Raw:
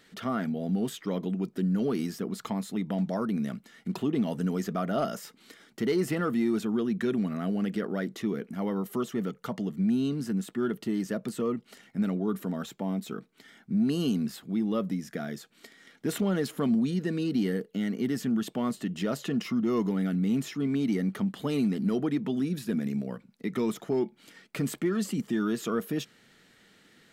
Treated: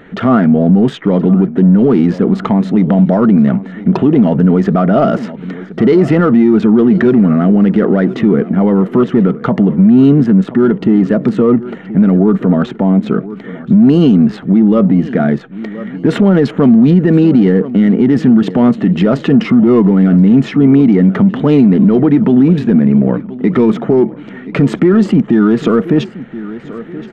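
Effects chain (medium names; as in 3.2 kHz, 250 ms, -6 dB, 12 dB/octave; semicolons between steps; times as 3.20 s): local Wiener filter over 9 samples; in parallel at -10 dB: saturation -35.5 dBFS, distortion -6 dB; on the sum: tape spacing loss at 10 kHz 31 dB; band-stop 1.1 kHz, Q 24; on a send: feedback delay 1025 ms, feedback 43%, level -19.5 dB; on the sum: loudness maximiser +24.5 dB; trim -1 dB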